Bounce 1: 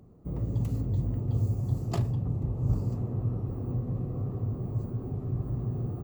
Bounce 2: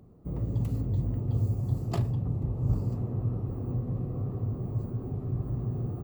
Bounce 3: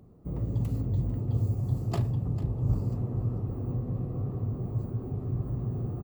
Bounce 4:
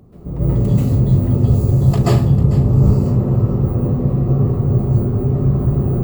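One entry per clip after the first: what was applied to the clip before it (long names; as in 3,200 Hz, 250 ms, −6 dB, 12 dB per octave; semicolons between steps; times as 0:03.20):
parametric band 6,400 Hz −4 dB 0.56 octaves
single-tap delay 447 ms −15 dB
convolution reverb RT60 0.40 s, pre-delay 123 ms, DRR −9 dB; level +8 dB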